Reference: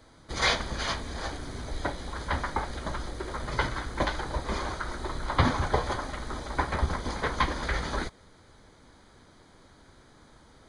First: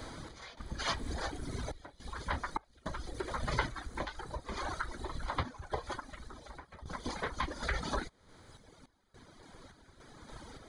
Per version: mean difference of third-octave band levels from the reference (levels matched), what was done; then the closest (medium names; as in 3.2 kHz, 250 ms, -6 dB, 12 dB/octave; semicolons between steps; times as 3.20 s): 6.0 dB: reverb removal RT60 1.4 s; compression 3:1, threshold -46 dBFS, peak gain reduction 20.5 dB; random-step tremolo, depth 95%; trim +11.5 dB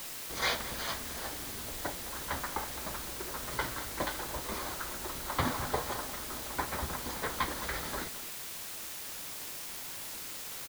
10.0 dB: bass shelf 90 Hz -10.5 dB; word length cut 6-bit, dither triangular; echo from a far wall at 37 m, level -15 dB; trim -6 dB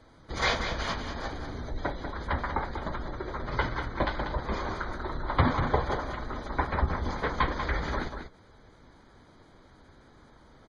4.5 dB: spectral gate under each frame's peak -30 dB strong; treble shelf 3.5 kHz -7.5 dB; delay 191 ms -8 dB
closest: third